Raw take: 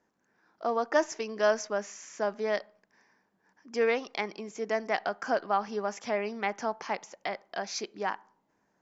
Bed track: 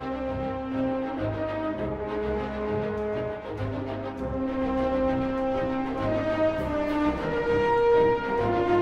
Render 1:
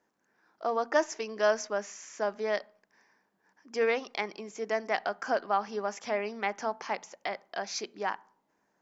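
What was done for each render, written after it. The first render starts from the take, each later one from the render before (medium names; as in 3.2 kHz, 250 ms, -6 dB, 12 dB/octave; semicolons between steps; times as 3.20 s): bass shelf 190 Hz -6.5 dB; hum notches 60/120/180/240 Hz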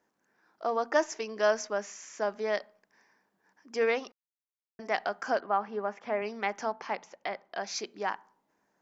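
4.12–4.79 s: mute; 5.40–6.22 s: band-pass 110–2100 Hz; 6.72–7.60 s: distance through air 110 m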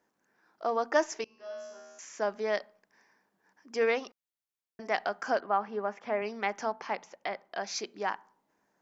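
1.24–1.99 s: feedback comb 78 Hz, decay 1.6 s, mix 100%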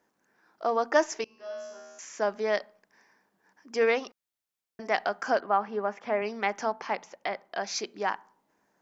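trim +3 dB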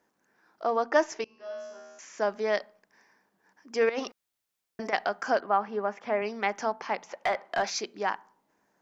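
0.64–2.18 s: distance through air 66 m; 3.89–4.93 s: compressor with a negative ratio -32 dBFS; 7.09–7.70 s: overdrive pedal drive 17 dB, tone 2.3 kHz, clips at -16.5 dBFS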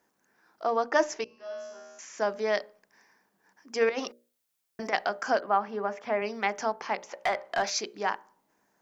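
treble shelf 6.5 kHz +6 dB; hum notches 60/120/180/240/300/360/420/480/540/600 Hz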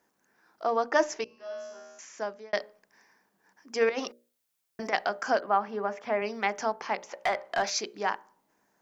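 1.72–2.53 s: fade out equal-power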